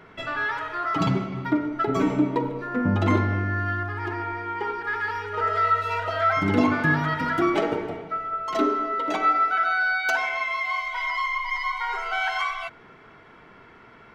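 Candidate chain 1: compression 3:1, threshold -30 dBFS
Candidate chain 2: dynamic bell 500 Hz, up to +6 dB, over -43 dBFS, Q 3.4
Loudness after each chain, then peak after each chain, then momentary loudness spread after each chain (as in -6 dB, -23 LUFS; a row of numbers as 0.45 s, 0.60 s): -31.0 LUFS, -24.0 LUFS; -18.0 dBFS, -7.0 dBFS; 5 LU, 8 LU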